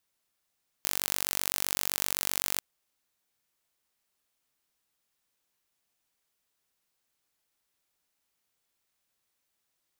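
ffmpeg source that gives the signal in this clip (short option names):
-f lavfi -i "aevalsrc='0.794*eq(mod(n,923),0)':d=1.75:s=44100"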